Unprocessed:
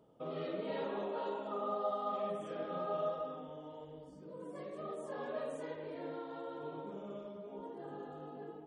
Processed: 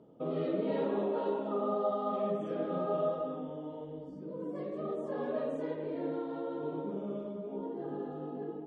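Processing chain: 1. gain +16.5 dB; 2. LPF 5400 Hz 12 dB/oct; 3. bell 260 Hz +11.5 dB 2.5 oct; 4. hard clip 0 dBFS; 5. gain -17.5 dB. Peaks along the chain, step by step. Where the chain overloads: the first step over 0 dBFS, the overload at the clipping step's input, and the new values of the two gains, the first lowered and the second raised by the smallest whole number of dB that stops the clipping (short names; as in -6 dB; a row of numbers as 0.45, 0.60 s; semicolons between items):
-8.0, -8.0, -3.0, -3.0, -20.5 dBFS; no overload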